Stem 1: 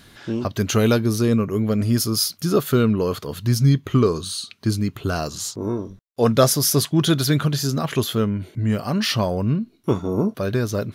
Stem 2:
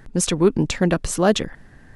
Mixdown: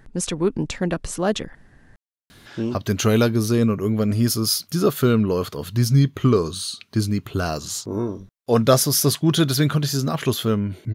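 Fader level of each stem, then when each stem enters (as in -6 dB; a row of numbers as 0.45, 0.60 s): 0.0, -4.5 dB; 2.30, 0.00 s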